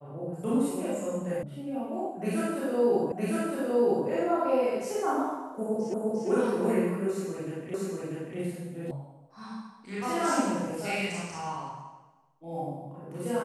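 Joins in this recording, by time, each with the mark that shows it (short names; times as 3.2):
1.43 sound cut off
3.12 repeat of the last 0.96 s
5.94 repeat of the last 0.35 s
7.74 repeat of the last 0.64 s
8.91 sound cut off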